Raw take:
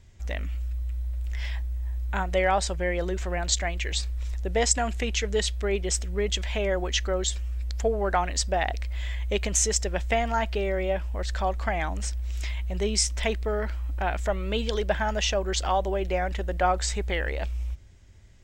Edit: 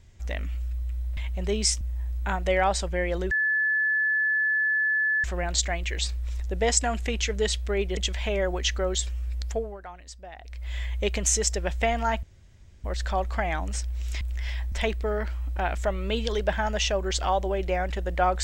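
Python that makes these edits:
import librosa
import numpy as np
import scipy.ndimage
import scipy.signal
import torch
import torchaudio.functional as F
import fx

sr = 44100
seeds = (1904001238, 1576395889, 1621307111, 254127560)

y = fx.edit(x, sr, fx.swap(start_s=1.17, length_s=0.51, other_s=12.5, other_length_s=0.64),
    fx.insert_tone(at_s=3.18, length_s=1.93, hz=1730.0, db=-21.0),
    fx.cut(start_s=5.91, length_s=0.35),
    fx.fade_down_up(start_s=7.71, length_s=1.36, db=-17.5, fade_s=0.36),
    fx.room_tone_fill(start_s=10.52, length_s=0.61), tone=tone)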